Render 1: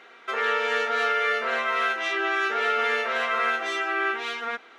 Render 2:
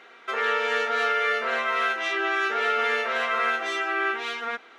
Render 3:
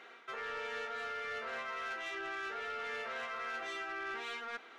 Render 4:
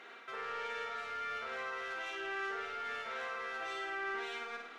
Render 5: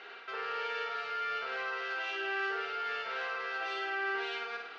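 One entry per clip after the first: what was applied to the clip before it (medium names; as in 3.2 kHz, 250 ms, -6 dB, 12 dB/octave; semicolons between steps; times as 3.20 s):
no audible change
reverse; compression 6:1, threshold -32 dBFS, peak gain reduction 11 dB; reverse; saturation -29 dBFS, distortion -17 dB; trim -4.5 dB
peak limiter -38 dBFS, peak gain reduction 4 dB; on a send: flutter echo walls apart 9.2 m, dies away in 0.72 s; on the sum: trim +1 dB
cabinet simulation 120–5900 Hz, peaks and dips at 250 Hz -8 dB, 420 Hz +6 dB, 800 Hz +5 dB, 1.5 kHz +6 dB, 2.8 kHz +8 dB, 4.6 kHz +9 dB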